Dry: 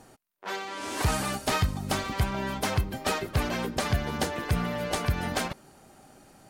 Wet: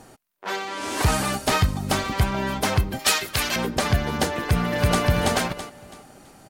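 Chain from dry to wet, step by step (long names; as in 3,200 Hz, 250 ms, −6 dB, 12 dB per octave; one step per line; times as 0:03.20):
0:02.99–0:03.56: tilt shelving filter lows −9.5 dB, about 1,300 Hz
0:04.39–0:05.03: delay throw 330 ms, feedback 30%, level −0.5 dB
level +5.5 dB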